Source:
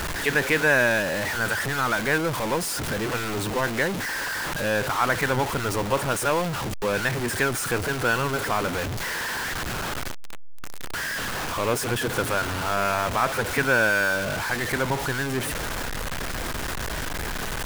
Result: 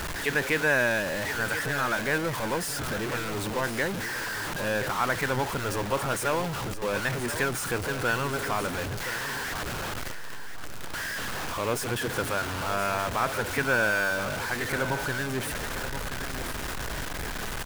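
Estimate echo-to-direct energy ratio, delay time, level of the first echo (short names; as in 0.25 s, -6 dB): -10.5 dB, 1.026 s, -11.0 dB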